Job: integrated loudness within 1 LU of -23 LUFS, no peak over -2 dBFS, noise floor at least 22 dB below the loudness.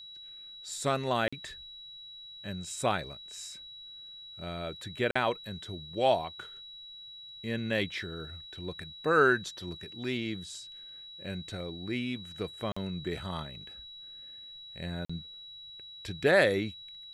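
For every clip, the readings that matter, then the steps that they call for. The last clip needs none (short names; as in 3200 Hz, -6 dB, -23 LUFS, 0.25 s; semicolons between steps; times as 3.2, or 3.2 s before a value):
dropouts 4; longest dropout 45 ms; steady tone 3900 Hz; tone level -45 dBFS; loudness -32.5 LUFS; peak -11.5 dBFS; loudness target -23.0 LUFS
-> interpolate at 1.28/5.11/12.72/15.05, 45 ms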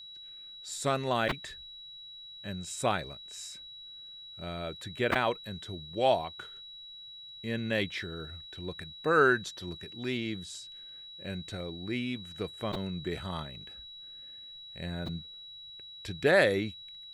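dropouts 0; steady tone 3900 Hz; tone level -45 dBFS
-> notch 3900 Hz, Q 30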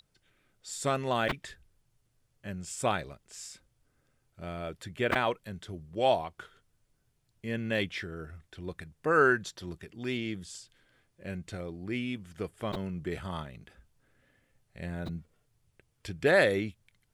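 steady tone none; loudness -32.0 LUFS; peak -12.0 dBFS; loudness target -23.0 LUFS
-> gain +9 dB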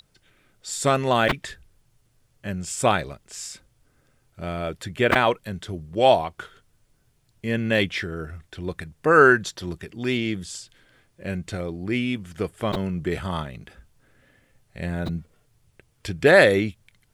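loudness -23.0 LUFS; peak -3.0 dBFS; noise floor -66 dBFS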